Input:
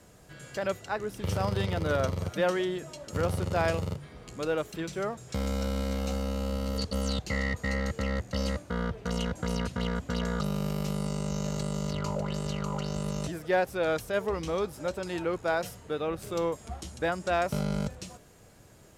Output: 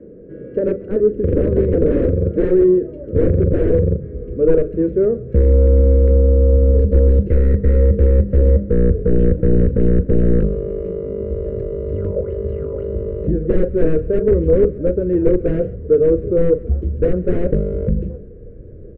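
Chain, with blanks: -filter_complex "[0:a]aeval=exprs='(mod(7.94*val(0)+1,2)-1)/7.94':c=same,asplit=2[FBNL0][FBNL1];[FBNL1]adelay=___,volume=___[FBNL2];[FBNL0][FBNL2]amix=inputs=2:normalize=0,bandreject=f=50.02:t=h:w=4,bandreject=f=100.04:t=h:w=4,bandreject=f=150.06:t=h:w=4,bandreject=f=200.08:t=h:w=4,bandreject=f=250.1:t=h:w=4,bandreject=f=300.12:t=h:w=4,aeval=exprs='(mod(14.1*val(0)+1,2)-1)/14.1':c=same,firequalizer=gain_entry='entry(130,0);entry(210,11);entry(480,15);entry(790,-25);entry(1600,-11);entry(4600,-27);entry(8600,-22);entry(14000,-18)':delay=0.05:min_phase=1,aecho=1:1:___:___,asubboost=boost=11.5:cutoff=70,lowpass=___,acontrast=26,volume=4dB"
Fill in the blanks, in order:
39, -12dB, 134, 0.0841, 1600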